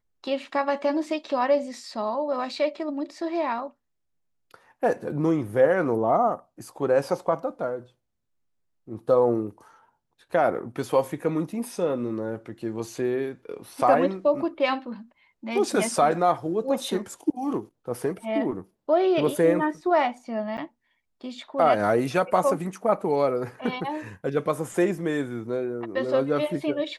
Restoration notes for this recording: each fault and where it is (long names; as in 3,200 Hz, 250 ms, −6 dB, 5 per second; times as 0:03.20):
0:20.57–0:20.58: drop-out 9.5 ms